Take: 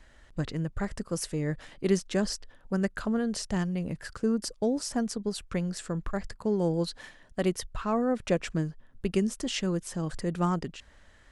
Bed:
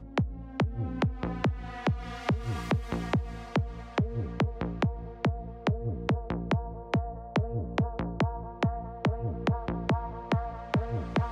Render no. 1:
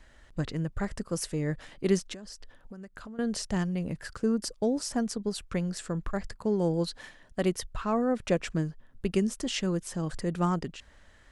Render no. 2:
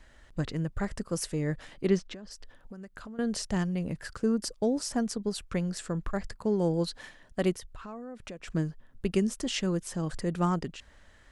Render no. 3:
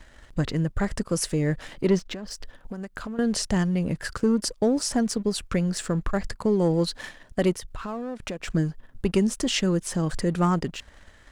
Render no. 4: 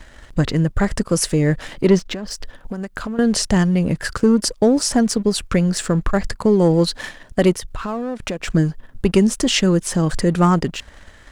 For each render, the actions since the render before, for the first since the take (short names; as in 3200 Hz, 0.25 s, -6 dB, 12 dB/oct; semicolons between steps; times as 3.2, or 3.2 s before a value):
2.13–3.19 compressor 12:1, threshold -40 dBFS
1.86–2.31 air absorption 120 m; 7.54–8.48 compressor 5:1, threshold -40 dBFS
sample leveller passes 1; in parallel at 0 dB: compressor, threshold -33 dBFS, peak gain reduction 14 dB
gain +7.5 dB